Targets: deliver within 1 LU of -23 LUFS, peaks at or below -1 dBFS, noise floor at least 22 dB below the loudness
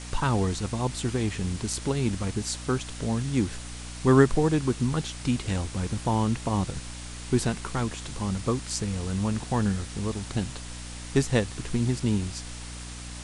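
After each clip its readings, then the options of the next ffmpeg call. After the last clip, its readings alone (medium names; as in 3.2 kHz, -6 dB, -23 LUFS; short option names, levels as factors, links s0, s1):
hum 60 Hz; highest harmonic 300 Hz; hum level -39 dBFS; noise floor -39 dBFS; noise floor target -50 dBFS; loudness -27.5 LUFS; peak level -5.5 dBFS; loudness target -23.0 LUFS
-> -af "bandreject=f=60:t=h:w=6,bandreject=f=120:t=h:w=6,bandreject=f=180:t=h:w=6,bandreject=f=240:t=h:w=6,bandreject=f=300:t=h:w=6"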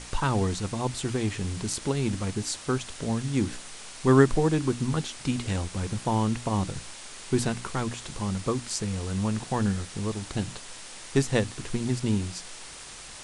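hum not found; noise floor -43 dBFS; noise floor target -50 dBFS
-> -af "afftdn=nr=7:nf=-43"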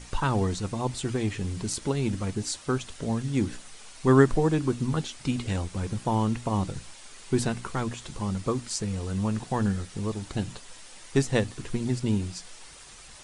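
noise floor -48 dBFS; noise floor target -51 dBFS
-> -af "afftdn=nr=6:nf=-48"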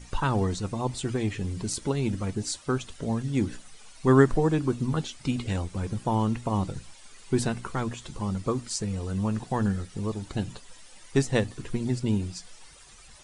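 noise floor -51 dBFS; loudness -28.5 LUFS; peak level -5.5 dBFS; loudness target -23.0 LUFS
-> -af "volume=1.88,alimiter=limit=0.891:level=0:latency=1"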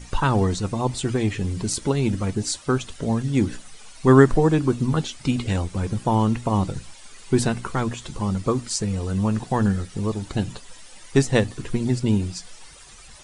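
loudness -23.0 LUFS; peak level -1.0 dBFS; noise floor -45 dBFS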